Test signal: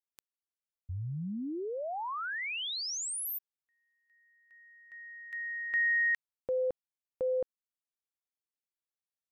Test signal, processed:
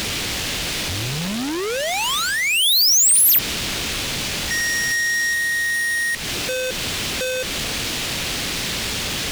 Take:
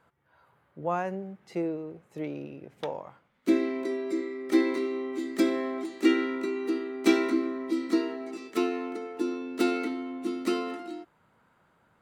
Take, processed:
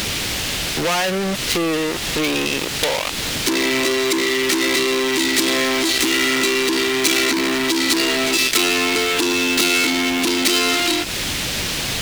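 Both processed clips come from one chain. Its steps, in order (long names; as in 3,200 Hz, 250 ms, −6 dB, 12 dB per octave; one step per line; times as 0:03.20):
leveller curve on the samples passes 5
background noise brown −29 dBFS
meter weighting curve D
downward compressor 6 to 1, threshold −25 dBFS
leveller curve on the samples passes 5
high-shelf EQ 2,900 Hz +11.5 dB
level −7 dB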